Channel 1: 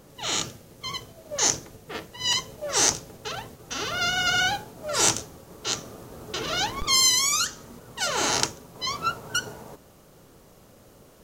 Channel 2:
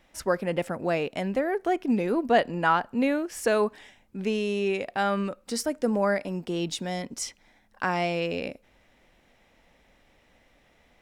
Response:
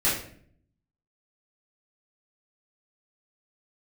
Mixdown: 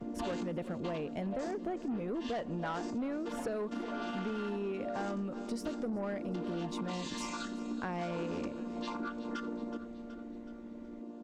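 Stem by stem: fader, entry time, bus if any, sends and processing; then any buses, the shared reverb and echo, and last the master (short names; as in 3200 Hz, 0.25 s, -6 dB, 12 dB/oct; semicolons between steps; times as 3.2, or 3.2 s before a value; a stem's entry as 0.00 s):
+0.5 dB, 0.00 s, no send, echo send -20.5 dB, chord vocoder major triad, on A#3; low shelf 190 Hz +11.5 dB; compressor 4:1, threshold -29 dBFS, peak gain reduction 11 dB; auto duck -6 dB, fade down 1.35 s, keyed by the second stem
-6.0 dB, 0.00 s, no send, echo send -20.5 dB, dry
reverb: off
echo: feedback echo 0.373 s, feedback 53%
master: tilt -2.5 dB/oct; soft clip -23 dBFS, distortion -15 dB; compressor, threshold -34 dBFS, peak gain reduction 8.5 dB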